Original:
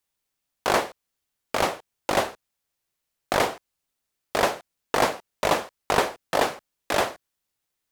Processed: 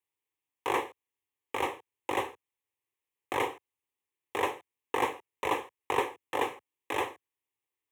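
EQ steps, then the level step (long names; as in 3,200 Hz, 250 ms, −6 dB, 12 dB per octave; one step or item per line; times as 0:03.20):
high-pass filter 85 Hz 24 dB per octave
high-shelf EQ 6,300 Hz −7 dB
phaser with its sweep stopped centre 960 Hz, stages 8
−4.0 dB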